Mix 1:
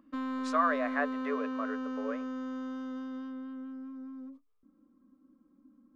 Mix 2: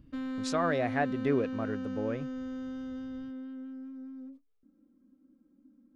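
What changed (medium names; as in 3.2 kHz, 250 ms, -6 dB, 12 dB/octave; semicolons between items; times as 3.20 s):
speech: remove rippled Chebyshev high-pass 420 Hz, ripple 9 dB; master: add peaking EQ 1.1 kHz -15 dB 0.43 oct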